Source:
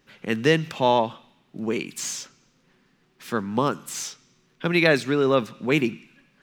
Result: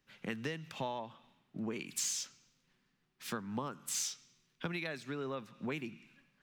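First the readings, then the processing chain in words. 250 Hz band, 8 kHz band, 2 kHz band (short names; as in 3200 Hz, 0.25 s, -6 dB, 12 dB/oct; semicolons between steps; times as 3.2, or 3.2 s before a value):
-16.5 dB, -4.5 dB, -17.5 dB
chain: bell 400 Hz -4.5 dB 1.3 oct; compressor 16:1, threshold -33 dBFS, peak gain reduction 19.5 dB; three-band expander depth 40%; gain -2.5 dB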